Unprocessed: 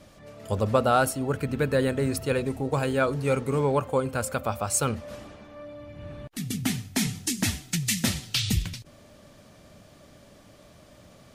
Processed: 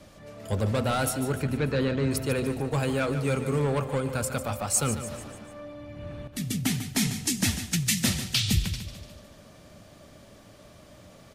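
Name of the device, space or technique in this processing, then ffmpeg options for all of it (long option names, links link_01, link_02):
one-band saturation: -filter_complex "[0:a]asettb=1/sr,asplit=3[link_01][link_02][link_03];[link_01]atrim=end=1.424[link_04];[link_02]atrim=start=1.42:end=2.11,asetpts=PTS-STARTPTS,afade=type=in:duration=0.004:curve=qsin,afade=type=out:start_time=0.686:duration=0.004:curve=qsin,lowpass=frequency=5600:width=0.5412,lowpass=frequency=5600:width=1.3066[link_05];[link_03]atrim=start=2.106[link_06];[link_04][link_05]acrossfade=duration=0.004:curve1=hsin:curve2=qsin[link_07];[link_07][link_06]acrossfade=duration=0.004:curve1=qsin:curve2=hsin,acrossover=split=260|2200[link_08][link_09][link_10];[link_09]asoftclip=type=tanh:threshold=-27.5dB[link_11];[link_08][link_11][link_10]amix=inputs=3:normalize=0,aecho=1:1:147|294|441|588|735:0.282|0.144|0.0733|0.0374|0.0191,volume=1dB"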